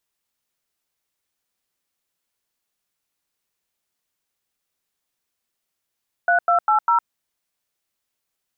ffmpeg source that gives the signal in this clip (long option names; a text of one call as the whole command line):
ffmpeg -f lavfi -i "aevalsrc='0.15*clip(min(mod(t,0.2),0.108-mod(t,0.2))/0.002,0,1)*(eq(floor(t/0.2),0)*(sin(2*PI*697*mod(t,0.2))+sin(2*PI*1477*mod(t,0.2)))+eq(floor(t/0.2),1)*(sin(2*PI*697*mod(t,0.2))+sin(2*PI*1336*mod(t,0.2)))+eq(floor(t/0.2),2)*(sin(2*PI*852*mod(t,0.2))+sin(2*PI*1336*mod(t,0.2)))+eq(floor(t/0.2),3)*(sin(2*PI*941*mod(t,0.2))+sin(2*PI*1336*mod(t,0.2))))':duration=0.8:sample_rate=44100" out.wav